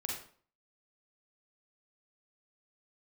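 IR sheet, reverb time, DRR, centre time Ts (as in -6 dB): 0.50 s, -2.0 dB, 42 ms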